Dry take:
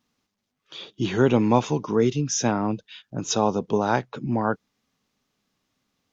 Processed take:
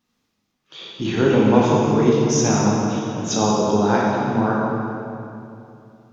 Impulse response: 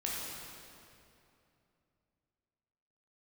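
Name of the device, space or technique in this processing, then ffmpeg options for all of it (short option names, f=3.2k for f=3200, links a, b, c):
stairwell: -filter_complex "[1:a]atrim=start_sample=2205[a];[0:a][a]afir=irnorm=-1:irlink=0,volume=1dB"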